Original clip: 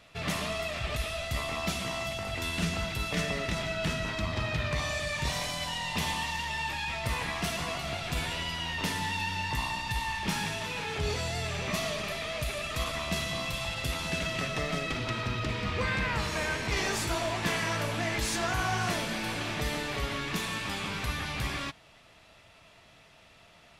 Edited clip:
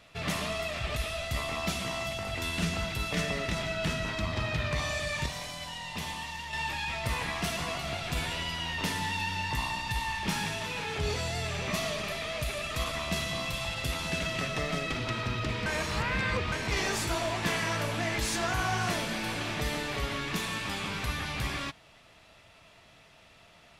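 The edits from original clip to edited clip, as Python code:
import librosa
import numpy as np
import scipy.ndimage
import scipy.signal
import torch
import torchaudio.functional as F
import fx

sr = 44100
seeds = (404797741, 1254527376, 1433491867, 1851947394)

y = fx.edit(x, sr, fx.clip_gain(start_s=5.26, length_s=1.27, db=-5.5),
    fx.reverse_span(start_s=15.66, length_s=0.86), tone=tone)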